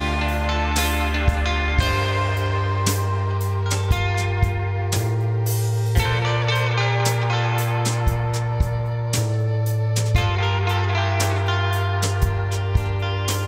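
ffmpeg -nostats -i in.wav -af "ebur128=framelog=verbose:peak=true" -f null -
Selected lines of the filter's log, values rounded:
Integrated loudness:
  I:         -21.4 LUFS
  Threshold: -31.4 LUFS
Loudness range:
  LRA:         1.1 LU
  Threshold: -41.4 LUFS
  LRA low:   -22.0 LUFS
  LRA high:  -20.8 LUFS
True peak:
  Peak:       -6.0 dBFS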